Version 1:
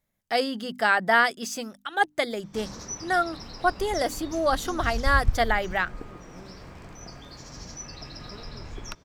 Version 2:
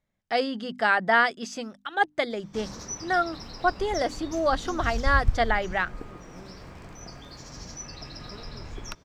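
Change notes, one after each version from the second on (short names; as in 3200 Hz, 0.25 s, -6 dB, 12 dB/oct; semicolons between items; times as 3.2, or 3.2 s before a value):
speech: add air absorption 89 m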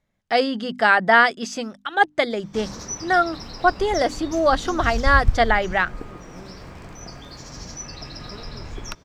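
speech +6.0 dB; background +4.5 dB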